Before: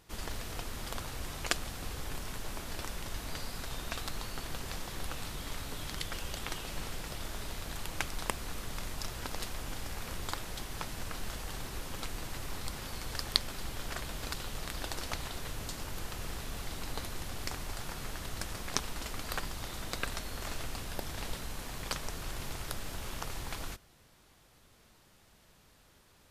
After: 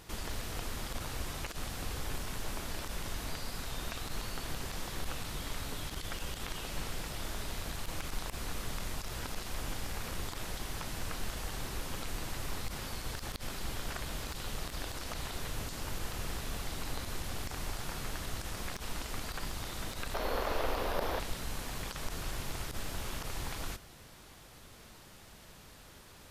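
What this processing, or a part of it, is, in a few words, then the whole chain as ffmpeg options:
de-esser from a sidechain: -filter_complex "[0:a]asettb=1/sr,asplit=3[a][b][c];[a]atrim=end=20.144[d];[b]atrim=start=20.14:end=21.2,asetpts=PTS-STARTPTS,afade=t=in:d=0.004:c=qsin,afade=t=out:st=1.056:d=0.004:c=qsin,equalizer=f=125:t=o:w=1:g=-11,equalizer=f=500:t=o:w=1:g=11,equalizer=f=1k:t=o:w=1:g=6,equalizer=f=8k:t=o:w=1:g=-11[e];[c]atrim=start=21.196[f];[d][e]acrossfade=d=0.004:c1=hsin:c2=qsin[g];[g][f]acrossfade=d=0.004:c1=qsin:c2=hsin,asplit=2[h][i];[i]highpass=4k,apad=whole_len=1160123[j];[h][j]sidechaincompress=threshold=-52dB:ratio=8:attack=0.94:release=31,volume=8.5dB"

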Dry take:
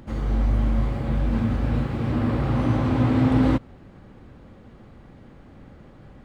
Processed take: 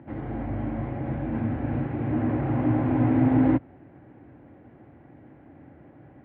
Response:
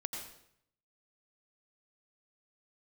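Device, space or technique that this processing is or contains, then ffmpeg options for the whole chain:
bass cabinet: -af "highpass=f=80:w=0.5412,highpass=f=80:w=1.3066,equalizer=f=94:t=q:w=4:g=-4,equalizer=f=200:t=q:w=4:g=-9,equalizer=f=300:t=q:w=4:g=7,equalizer=f=480:t=q:w=4:g=-4,equalizer=f=710:t=q:w=4:g=4,equalizer=f=1.2k:t=q:w=4:g=-9,lowpass=f=2.2k:w=0.5412,lowpass=f=2.2k:w=1.3066,volume=-1.5dB"

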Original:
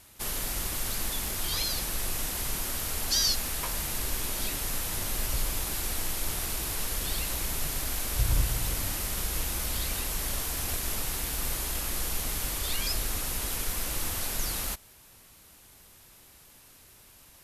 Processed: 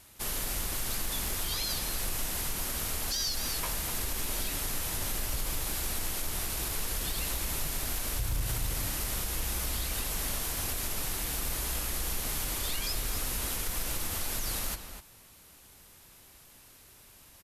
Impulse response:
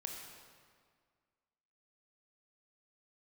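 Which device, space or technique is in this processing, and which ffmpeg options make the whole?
limiter into clipper: -filter_complex "[0:a]asplit=2[a][b];[b]adelay=250.7,volume=-9dB,highshelf=f=4k:g=-5.64[c];[a][c]amix=inputs=2:normalize=0,alimiter=limit=-21dB:level=0:latency=1:release=63,asoftclip=type=hard:threshold=-23dB,volume=-1dB"

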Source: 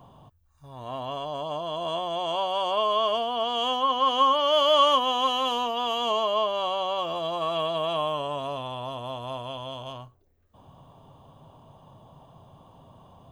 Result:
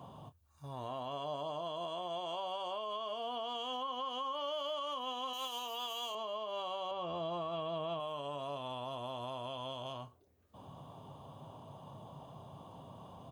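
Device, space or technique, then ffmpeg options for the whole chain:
podcast mastering chain: -filter_complex "[0:a]equalizer=f=1.8k:t=o:w=0.58:g=-3.5,asplit=2[a][b];[b]adelay=28,volume=-12dB[c];[a][c]amix=inputs=2:normalize=0,asettb=1/sr,asplit=3[d][e][f];[d]atrim=end=5.334[g];[e]atrim=start=5.33:end=6.15,asetpts=PTS-STARTPTS,afade=t=in:d=0.004:c=qsin,afade=t=out:st=0.816:d=0.004:c=qsin,aemphasis=mode=production:type=riaa[h];[f]atrim=start=6.146[i];[g][h]acrossfade=d=0.004:c1=hsin:c2=qsin[j];[j][i]acrossfade=d=0.004:c1=qsin:c2=hsin,asettb=1/sr,asplit=3[k][l][m];[k]atrim=end=6.914[n];[l]atrim=start=6.91:end=8,asetpts=PTS-STARTPTS,afade=t=in:d=0.004:c=qsin,afade=t=out:st=1.086:d=0.004:c=qsin,aemphasis=mode=reproduction:type=bsi[o];[m]atrim=start=7.996[p];[n][o]acrossfade=d=0.004:c1=hsin:c2=qsin[q];[q][p]acrossfade=d=0.004:c1=qsin:c2=hsin,highpass=90,deesser=0.55,acompressor=threshold=-42dB:ratio=2,alimiter=level_in=7.5dB:limit=-24dB:level=0:latency=1:release=130,volume=-7.5dB,volume=1dB" -ar 44100 -c:a libmp3lame -b:a 96k

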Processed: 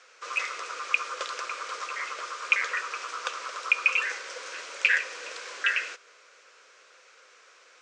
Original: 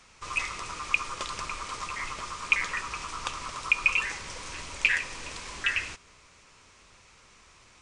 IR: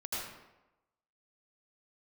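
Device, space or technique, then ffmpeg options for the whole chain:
phone speaker on a table: -af "highpass=f=410:w=0.5412,highpass=f=410:w=1.3066,equalizer=f=500:t=q:w=4:g=9,equalizer=f=900:t=q:w=4:g=-7,equalizer=f=1.5k:t=q:w=4:g=9,lowpass=f=7.4k:w=0.5412,lowpass=f=7.4k:w=1.3066"

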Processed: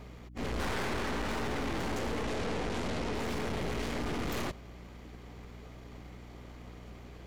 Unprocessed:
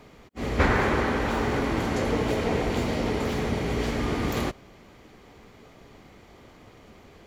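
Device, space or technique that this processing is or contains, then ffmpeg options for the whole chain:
valve amplifier with mains hum: -filter_complex "[0:a]aeval=exprs='(tanh(56.2*val(0)+0.7)-tanh(0.7))/56.2':c=same,aeval=exprs='val(0)+0.00316*(sin(2*PI*60*n/s)+sin(2*PI*2*60*n/s)/2+sin(2*PI*3*60*n/s)/3+sin(2*PI*4*60*n/s)/4+sin(2*PI*5*60*n/s)/5)':c=same,asettb=1/sr,asplit=3[a][b][c];[a]atrim=end=2.234[d];[b]atrim=start=2.23:end=3.15,asetpts=PTS-STARTPTS,afade=t=in:d=0.004:c=qsin,afade=t=out:st=0.916:d=0.004:c=qsin,lowpass=10k[e];[c]atrim=start=3.146[f];[d][e]acrossfade=d=0.004:c1=hsin:c2=qsin[g];[g][f]acrossfade=d=0.004:c1=qsin:c2=hsin,volume=2dB"

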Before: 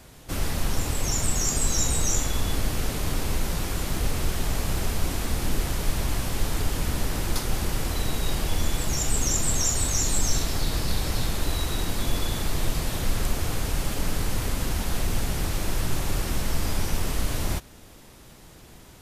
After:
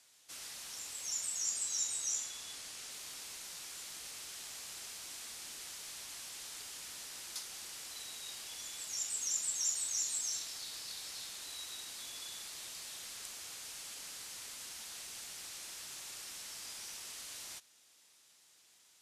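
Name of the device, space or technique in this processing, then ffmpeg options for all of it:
piezo pickup straight into a mixer: -filter_complex "[0:a]lowpass=7.3k,aderivative,asettb=1/sr,asplit=3[a][b][c];[a]atrim=end=1.384[d];[b]atrim=start=1.38:end=2.91,asetpts=PTS-STARTPTS,afade=t=in:d=0.004:c=qsin,afade=t=out:st=1.526:d=0.004:c=qsin,lowpass=12k[e];[c]atrim=start=2.906[f];[d][e]acrossfade=d=0.004:c1=hsin:c2=qsin[g];[g][f]acrossfade=d=0.004:c1=qsin:c2=hsin,volume=-5dB"

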